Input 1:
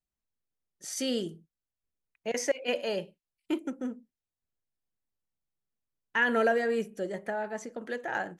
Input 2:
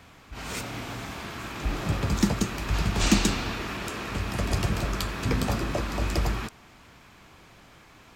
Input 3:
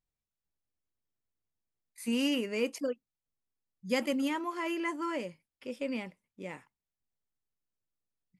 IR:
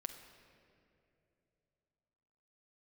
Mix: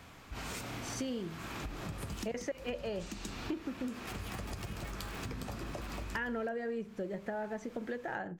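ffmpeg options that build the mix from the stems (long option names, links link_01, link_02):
-filter_complex "[0:a]aemphasis=mode=reproduction:type=bsi,volume=2dB,asplit=2[link_01][link_02];[1:a]highshelf=frequency=3300:gain=-9,volume=-2dB[link_03];[2:a]highpass=640,aeval=exprs='val(0)*sgn(sin(2*PI*190*n/s))':channel_layout=same,volume=-6dB[link_04];[link_02]apad=whole_len=370113[link_05];[link_04][link_05]sidechaincompress=threshold=-47dB:ratio=8:attack=16:release=136[link_06];[link_03][link_06]amix=inputs=2:normalize=0,highshelf=frequency=4500:gain=11,acompressor=threshold=-37dB:ratio=6,volume=0dB[link_07];[link_01][link_07]amix=inputs=2:normalize=0,acompressor=threshold=-36dB:ratio=5"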